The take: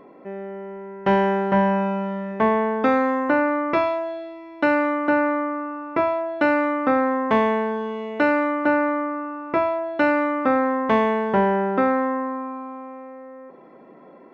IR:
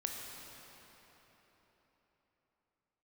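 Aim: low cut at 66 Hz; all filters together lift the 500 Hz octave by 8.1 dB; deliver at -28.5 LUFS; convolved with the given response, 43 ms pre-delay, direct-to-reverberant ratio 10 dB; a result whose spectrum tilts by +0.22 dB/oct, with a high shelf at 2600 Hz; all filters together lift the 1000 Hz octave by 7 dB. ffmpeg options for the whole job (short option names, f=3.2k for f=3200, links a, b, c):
-filter_complex "[0:a]highpass=66,equalizer=f=500:t=o:g=8,equalizer=f=1k:t=o:g=5,highshelf=f=2.6k:g=7,asplit=2[a][b];[1:a]atrim=start_sample=2205,adelay=43[c];[b][c]afir=irnorm=-1:irlink=0,volume=-11.5dB[d];[a][d]amix=inputs=2:normalize=0,volume=-13.5dB"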